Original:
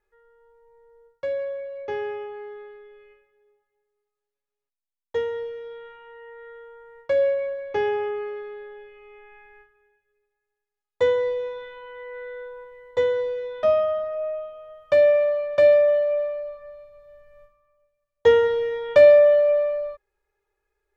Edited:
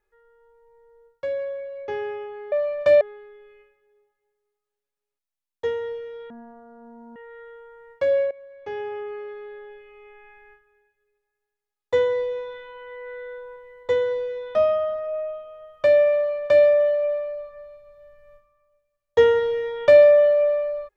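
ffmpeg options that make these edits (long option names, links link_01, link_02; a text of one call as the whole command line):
ffmpeg -i in.wav -filter_complex "[0:a]asplit=6[link_01][link_02][link_03][link_04][link_05][link_06];[link_01]atrim=end=2.522[link_07];[link_02]atrim=start=15.238:end=15.732[link_08];[link_03]atrim=start=2.518:end=5.814[link_09];[link_04]atrim=start=5.81:end=6.24,asetpts=PTS-STARTPTS,asetrate=22050,aresample=44100[link_10];[link_05]atrim=start=6.236:end=7.39,asetpts=PTS-STARTPTS,afade=type=out:start_time=1.15:duration=0.004:curve=hsin:silence=0.105925[link_11];[link_06]atrim=start=7.39,asetpts=PTS-STARTPTS,afade=type=in:duration=1.31:silence=0.105925[link_12];[link_07][link_08]acrossfade=duration=0.004:curve1=hsin:curve2=hsin[link_13];[link_13][link_09]acrossfade=duration=0.004:curve1=hsin:curve2=hsin[link_14];[link_14][link_10]acrossfade=duration=0.004:curve1=hsin:curve2=hsin[link_15];[link_11][link_12]concat=n=2:v=0:a=1[link_16];[link_15][link_16]acrossfade=duration=0.004:curve1=hsin:curve2=hsin" out.wav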